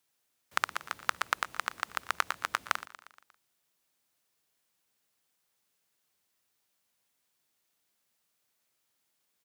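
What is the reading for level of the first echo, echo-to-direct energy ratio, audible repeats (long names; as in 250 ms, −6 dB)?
−17.0 dB, −15.0 dB, 4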